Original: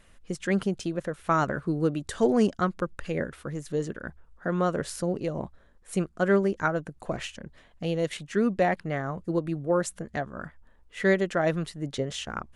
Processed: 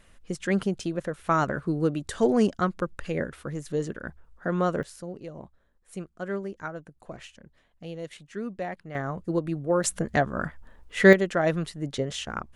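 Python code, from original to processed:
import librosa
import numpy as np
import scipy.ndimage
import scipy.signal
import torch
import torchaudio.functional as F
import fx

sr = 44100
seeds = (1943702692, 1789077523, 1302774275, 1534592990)

y = fx.gain(x, sr, db=fx.steps((0.0, 0.5), (4.83, -9.5), (8.95, 0.5), (9.84, 8.0), (11.13, 1.0)))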